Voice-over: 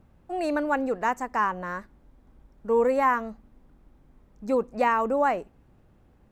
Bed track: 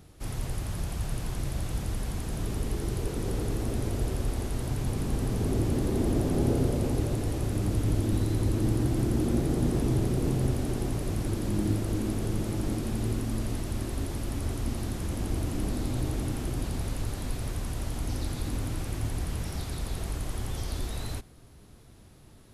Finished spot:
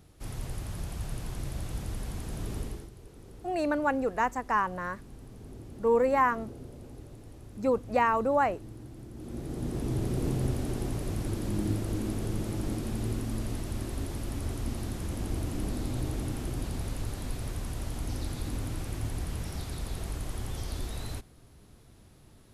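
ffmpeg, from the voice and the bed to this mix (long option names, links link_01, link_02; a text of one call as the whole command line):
ffmpeg -i stem1.wav -i stem2.wav -filter_complex "[0:a]adelay=3150,volume=-2dB[link_01];[1:a]volume=12.5dB,afade=type=out:start_time=2.59:duration=0.31:silence=0.177828,afade=type=in:start_time=9.14:duration=1.08:silence=0.149624[link_02];[link_01][link_02]amix=inputs=2:normalize=0" out.wav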